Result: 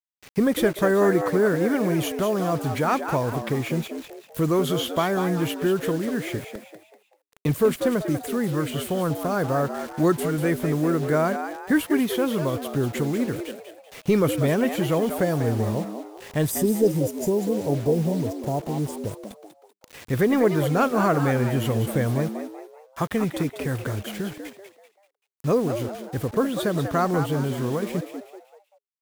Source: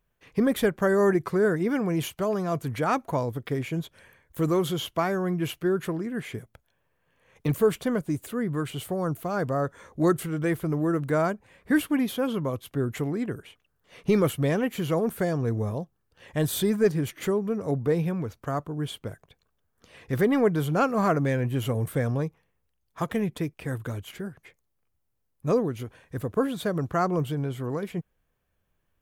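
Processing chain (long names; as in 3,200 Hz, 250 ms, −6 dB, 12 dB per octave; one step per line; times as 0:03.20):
gain on a spectral selection 0:16.50–0:19.20, 1,000–4,700 Hz −25 dB
in parallel at −0.5 dB: downward compressor 5 to 1, threshold −32 dBFS, peak gain reduction 14.5 dB
on the sum: bit reduction 7 bits
echo with shifted repeats 193 ms, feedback 39%, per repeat +100 Hz, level −8.5 dB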